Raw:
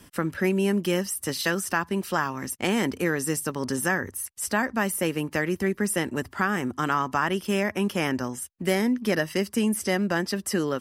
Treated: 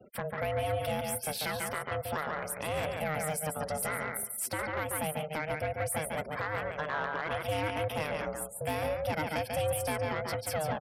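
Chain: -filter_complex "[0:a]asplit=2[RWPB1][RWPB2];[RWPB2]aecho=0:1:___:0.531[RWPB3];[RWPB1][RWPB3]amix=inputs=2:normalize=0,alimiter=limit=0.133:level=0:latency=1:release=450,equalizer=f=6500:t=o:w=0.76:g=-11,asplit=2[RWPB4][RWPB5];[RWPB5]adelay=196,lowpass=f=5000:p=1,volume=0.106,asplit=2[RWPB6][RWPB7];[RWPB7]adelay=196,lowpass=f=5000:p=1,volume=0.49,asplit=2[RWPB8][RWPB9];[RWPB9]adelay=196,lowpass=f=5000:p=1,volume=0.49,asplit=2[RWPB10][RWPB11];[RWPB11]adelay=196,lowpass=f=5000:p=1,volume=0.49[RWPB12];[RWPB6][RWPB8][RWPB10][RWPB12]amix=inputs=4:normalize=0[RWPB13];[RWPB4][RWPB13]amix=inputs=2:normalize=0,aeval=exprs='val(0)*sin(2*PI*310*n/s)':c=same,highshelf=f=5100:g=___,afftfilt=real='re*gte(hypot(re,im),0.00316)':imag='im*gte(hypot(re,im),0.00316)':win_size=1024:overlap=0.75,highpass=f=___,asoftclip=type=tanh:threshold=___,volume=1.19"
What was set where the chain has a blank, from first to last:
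142, 3.5, 130, 0.0596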